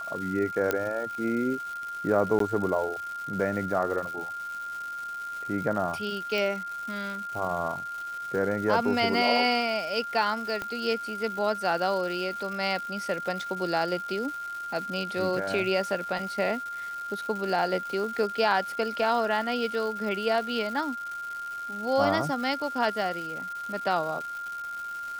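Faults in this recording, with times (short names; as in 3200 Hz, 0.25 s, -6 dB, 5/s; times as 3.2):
crackle 440/s -36 dBFS
tone 1400 Hz -33 dBFS
0.71 pop -11 dBFS
2.39–2.4 gap
6.38 pop
10.62 pop -18 dBFS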